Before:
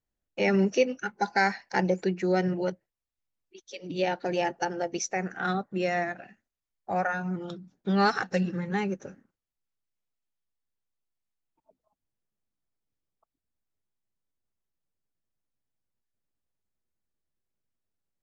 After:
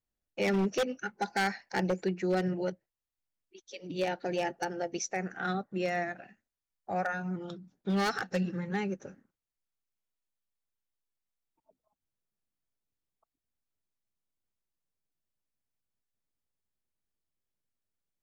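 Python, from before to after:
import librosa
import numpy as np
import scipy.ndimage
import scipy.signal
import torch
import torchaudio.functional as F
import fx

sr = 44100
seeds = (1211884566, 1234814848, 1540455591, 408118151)

y = fx.dynamic_eq(x, sr, hz=1000.0, q=4.5, threshold_db=-46.0, ratio=4.0, max_db=-6)
y = 10.0 ** (-18.5 / 20.0) * (np.abs((y / 10.0 ** (-18.5 / 20.0) + 3.0) % 4.0 - 2.0) - 1.0)
y = F.gain(torch.from_numpy(y), -3.5).numpy()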